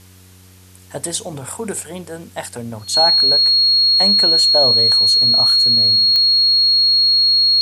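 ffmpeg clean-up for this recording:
-af "adeclick=t=4,bandreject=f=92.5:t=h:w=4,bandreject=f=185:t=h:w=4,bandreject=f=277.5:t=h:w=4,bandreject=f=370:t=h:w=4,bandreject=f=462.5:t=h:w=4,bandreject=f=4.3k:w=30,agate=range=-21dB:threshold=-36dB"

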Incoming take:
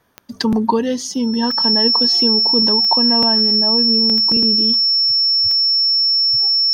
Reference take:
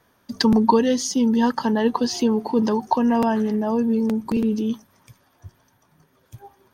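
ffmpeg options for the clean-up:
-af "adeclick=t=4,bandreject=f=5.4k:w=30"

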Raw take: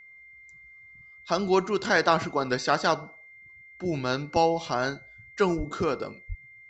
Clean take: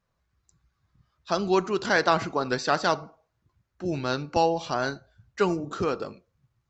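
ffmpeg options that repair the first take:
-filter_complex "[0:a]bandreject=f=2.1k:w=30,asplit=3[a][b][c];[a]afade=t=out:st=5.57:d=0.02[d];[b]highpass=f=140:w=0.5412,highpass=f=140:w=1.3066,afade=t=in:st=5.57:d=0.02,afade=t=out:st=5.69:d=0.02[e];[c]afade=t=in:st=5.69:d=0.02[f];[d][e][f]amix=inputs=3:normalize=0,asplit=3[g][h][i];[g]afade=t=out:st=6.28:d=0.02[j];[h]highpass=f=140:w=0.5412,highpass=f=140:w=1.3066,afade=t=in:st=6.28:d=0.02,afade=t=out:st=6.4:d=0.02[k];[i]afade=t=in:st=6.4:d=0.02[l];[j][k][l]amix=inputs=3:normalize=0"

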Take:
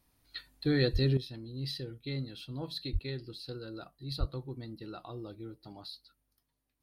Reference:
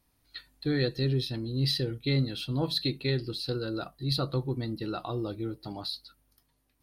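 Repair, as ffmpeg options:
-filter_complex "[0:a]asplit=3[a][b][c];[a]afade=t=out:st=0.92:d=0.02[d];[b]highpass=f=140:w=0.5412,highpass=f=140:w=1.3066,afade=t=in:st=0.92:d=0.02,afade=t=out:st=1.04:d=0.02[e];[c]afade=t=in:st=1.04:d=0.02[f];[d][e][f]amix=inputs=3:normalize=0,asplit=3[g][h][i];[g]afade=t=out:st=2.92:d=0.02[j];[h]highpass=f=140:w=0.5412,highpass=f=140:w=1.3066,afade=t=in:st=2.92:d=0.02,afade=t=out:st=3.04:d=0.02[k];[i]afade=t=in:st=3.04:d=0.02[l];[j][k][l]amix=inputs=3:normalize=0,asplit=3[m][n][o];[m]afade=t=out:st=4.19:d=0.02[p];[n]highpass=f=140:w=0.5412,highpass=f=140:w=1.3066,afade=t=in:st=4.19:d=0.02,afade=t=out:st=4.31:d=0.02[q];[o]afade=t=in:st=4.31:d=0.02[r];[p][q][r]amix=inputs=3:normalize=0,asetnsamples=n=441:p=0,asendcmd='1.17 volume volume 10dB',volume=0dB"

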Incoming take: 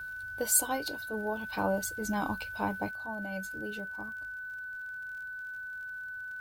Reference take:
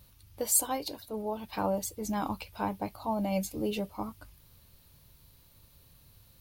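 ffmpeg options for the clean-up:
-af "adeclick=t=4,bandreject=f=1.5k:w=30,asetnsamples=n=441:p=0,asendcmd='2.91 volume volume 9dB',volume=0dB"

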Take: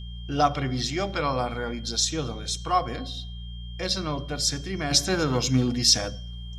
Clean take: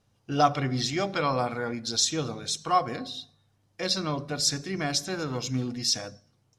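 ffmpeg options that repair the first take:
-af "bandreject=f=59.1:t=h:w=4,bandreject=f=118.2:t=h:w=4,bandreject=f=177.3:t=h:w=4,bandreject=f=3.2k:w=30,asetnsamples=n=441:p=0,asendcmd='4.91 volume volume -7dB',volume=0dB"

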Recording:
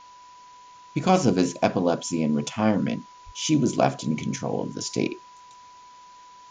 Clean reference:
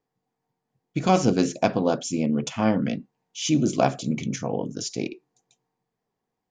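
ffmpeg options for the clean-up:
-filter_complex "[0:a]bandreject=f=990:w=30,asplit=3[a][b][c];[a]afade=t=out:st=3.25:d=0.02[d];[b]highpass=f=140:w=0.5412,highpass=f=140:w=1.3066,afade=t=in:st=3.25:d=0.02,afade=t=out:st=3.37:d=0.02[e];[c]afade=t=in:st=3.37:d=0.02[f];[d][e][f]amix=inputs=3:normalize=0,agate=range=-21dB:threshold=-41dB,asetnsamples=n=441:p=0,asendcmd='4.89 volume volume -4dB',volume=0dB"

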